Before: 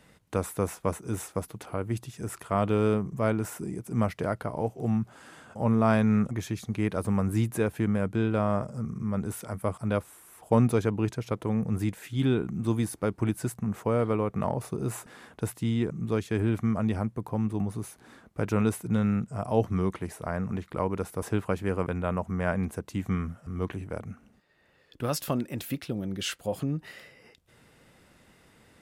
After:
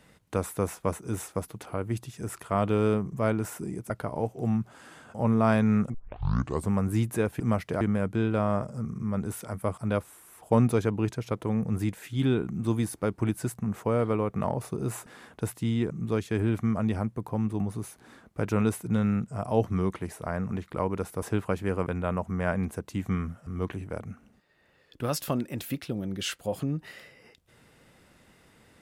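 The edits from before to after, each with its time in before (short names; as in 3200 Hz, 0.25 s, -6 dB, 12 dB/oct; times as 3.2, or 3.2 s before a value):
3.9–4.31 move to 7.81
6.35 tape start 0.76 s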